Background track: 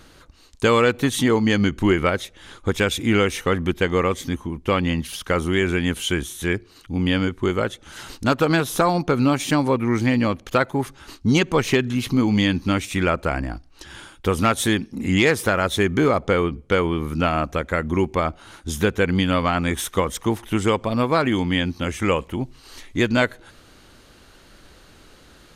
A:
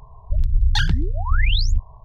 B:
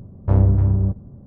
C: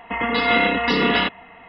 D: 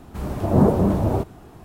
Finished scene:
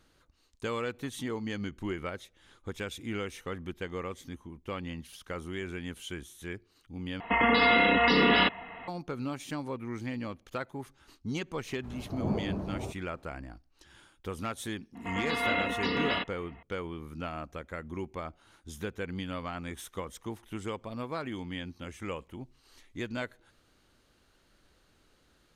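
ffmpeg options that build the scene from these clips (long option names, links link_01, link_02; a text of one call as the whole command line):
ffmpeg -i bed.wav -i cue0.wav -i cue1.wav -i cue2.wav -i cue3.wav -filter_complex "[3:a]asplit=2[link_01][link_02];[0:a]volume=-17dB[link_03];[link_01]alimiter=level_in=13dB:limit=-1dB:release=50:level=0:latency=1[link_04];[4:a]aemphasis=mode=reproduction:type=50fm[link_05];[link_03]asplit=2[link_06][link_07];[link_06]atrim=end=7.204[link_08];[link_04]atrim=end=1.68,asetpts=PTS-STARTPTS,volume=-13dB[link_09];[link_07]atrim=start=8.876[link_10];[link_05]atrim=end=1.64,asetpts=PTS-STARTPTS,volume=-16.5dB,afade=type=in:duration=0.004:curve=hsin,afade=type=out:start_time=1.636:duration=0.004:curve=hsin,adelay=11690[link_11];[link_02]atrim=end=1.68,asetpts=PTS-STARTPTS,volume=-11.5dB,afade=type=in:duration=0.004:curve=hsin,afade=type=out:start_time=1.676:duration=0.004:curve=hsin,adelay=14950[link_12];[link_08][link_09]acrossfade=duration=0.004:curve1=hsin:curve2=hsin[link_13];[link_13][link_10]acrossfade=duration=0.004:curve1=hsin:curve2=hsin[link_14];[link_14][link_11][link_12]amix=inputs=3:normalize=0" out.wav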